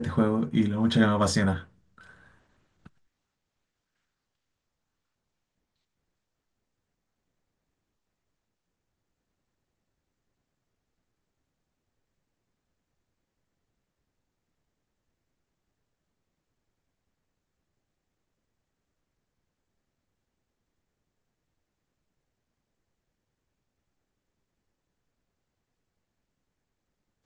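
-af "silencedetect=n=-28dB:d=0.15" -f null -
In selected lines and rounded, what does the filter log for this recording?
silence_start: 1.57
silence_end: 27.25 | silence_duration: 25.69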